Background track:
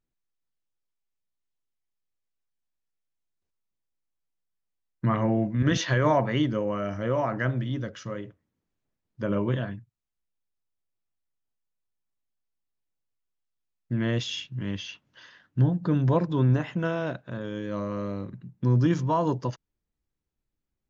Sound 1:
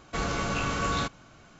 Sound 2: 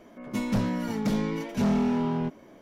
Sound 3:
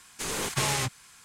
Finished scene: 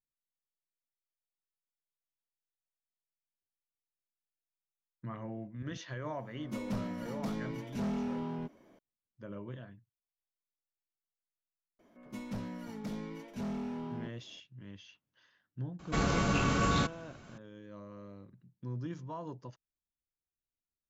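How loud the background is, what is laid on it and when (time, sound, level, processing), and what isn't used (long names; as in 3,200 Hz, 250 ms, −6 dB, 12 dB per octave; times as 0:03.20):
background track −17.5 dB
0:06.18: mix in 2 −10.5 dB
0:11.79: mix in 2 −13.5 dB
0:15.79: mix in 1 −2.5 dB + parametric band 180 Hz +6 dB 2 octaves
not used: 3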